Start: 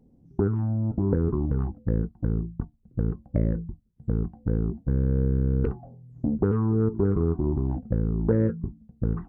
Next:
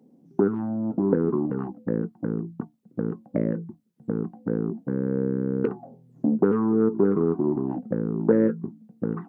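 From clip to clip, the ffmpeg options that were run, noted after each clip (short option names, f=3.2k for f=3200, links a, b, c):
-af "highpass=f=190:w=0.5412,highpass=f=190:w=1.3066,volume=5dB"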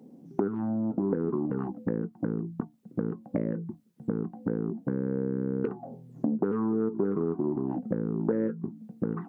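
-af "acompressor=threshold=-34dB:ratio=3,volume=5.5dB"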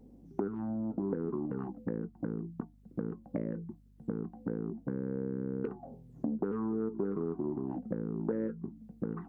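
-af "aeval=exprs='val(0)+0.002*(sin(2*PI*50*n/s)+sin(2*PI*2*50*n/s)/2+sin(2*PI*3*50*n/s)/3+sin(2*PI*4*50*n/s)/4+sin(2*PI*5*50*n/s)/5)':c=same,volume=-6dB"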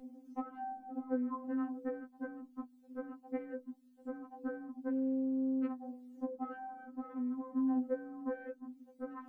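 -filter_complex "[0:a]acrossover=split=380[a][b];[a]alimiter=level_in=9.5dB:limit=-24dB:level=0:latency=1:release=95,volume=-9.5dB[c];[c][b]amix=inputs=2:normalize=0,afftfilt=real='re*3.46*eq(mod(b,12),0)':imag='im*3.46*eq(mod(b,12),0)':win_size=2048:overlap=0.75,volume=4.5dB"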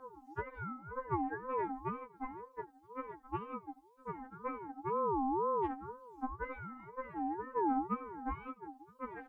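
-filter_complex "[0:a]asplit=2[a][b];[b]adelay=83,lowpass=f=1.8k:p=1,volume=-20dB,asplit=2[c][d];[d]adelay=83,lowpass=f=1.8k:p=1,volume=0.41,asplit=2[e][f];[f]adelay=83,lowpass=f=1.8k:p=1,volume=0.41[g];[a][c][e][g]amix=inputs=4:normalize=0,aeval=exprs='val(0)*sin(2*PI*650*n/s+650*0.2/2*sin(2*PI*2*n/s))':c=same,volume=2.5dB"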